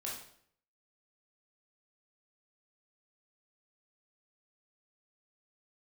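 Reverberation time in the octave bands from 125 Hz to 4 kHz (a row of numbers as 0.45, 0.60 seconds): 0.70, 0.65, 0.65, 0.60, 0.55, 0.55 seconds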